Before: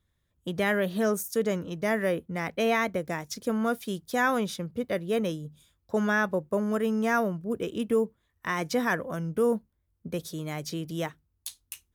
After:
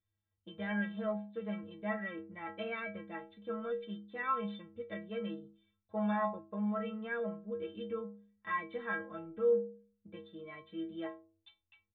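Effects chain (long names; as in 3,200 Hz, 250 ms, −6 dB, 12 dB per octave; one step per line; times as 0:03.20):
stiff-string resonator 97 Hz, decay 0.69 s, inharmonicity 0.03
downsampling to 8,000 Hz
dynamic equaliser 1,300 Hz, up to +4 dB, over −55 dBFS, Q 1.2
level +1 dB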